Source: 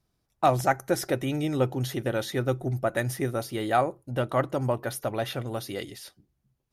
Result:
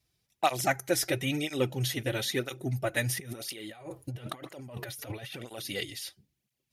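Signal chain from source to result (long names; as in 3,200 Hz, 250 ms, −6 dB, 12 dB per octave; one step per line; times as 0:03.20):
high shelf with overshoot 1,700 Hz +8 dB, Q 1.5
0:03.17–0:05.65: compressor whose output falls as the input rises −38 dBFS, ratio −1
through-zero flanger with one copy inverted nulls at 1 Hz, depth 5.8 ms
level −1 dB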